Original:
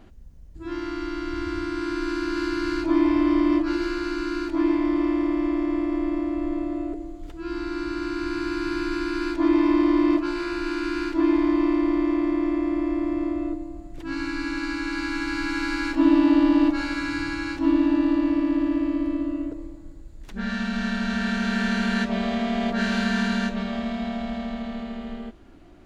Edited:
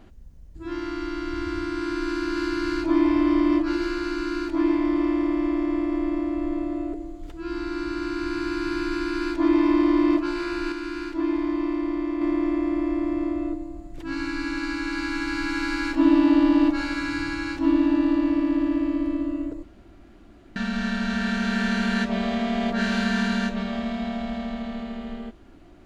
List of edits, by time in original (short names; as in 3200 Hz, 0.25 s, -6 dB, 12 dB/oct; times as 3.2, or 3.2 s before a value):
10.72–12.21 gain -4.5 dB
19.63–20.56 room tone